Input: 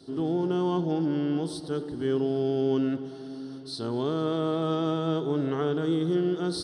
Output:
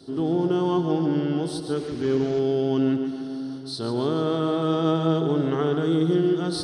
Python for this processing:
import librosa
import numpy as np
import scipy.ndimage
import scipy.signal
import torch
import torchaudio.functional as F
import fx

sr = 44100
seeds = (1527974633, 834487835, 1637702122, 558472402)

y = fx.delta_mod(x, sr, bps=32000, step_db=-42.0, at=(1.76, 2.39))
y = fx.echo_feedback(y, sr, ms=143, feedback_pct=52, wet_db=-9.0)
y = y * 10.0 ** (3.5 / 20.0)